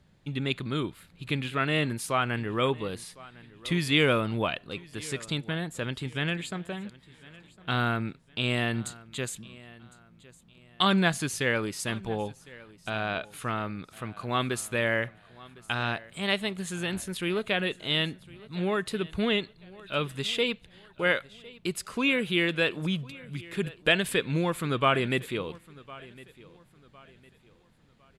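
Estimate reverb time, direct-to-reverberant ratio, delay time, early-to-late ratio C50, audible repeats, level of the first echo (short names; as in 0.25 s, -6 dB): none, none, 1.057 s, none, 2, -21.0 dB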